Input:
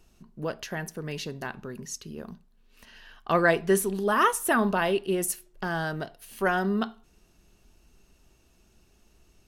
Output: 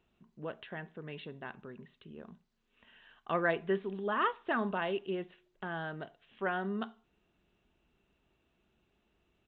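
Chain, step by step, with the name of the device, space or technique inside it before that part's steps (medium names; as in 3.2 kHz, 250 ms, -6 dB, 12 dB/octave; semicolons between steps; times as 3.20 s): Bluetooth headset (high-pass 120 Hz 6 dB/octave; resampled via 8 kHz; trim -8.5 dB; SBC 64 kbps 16 kHz)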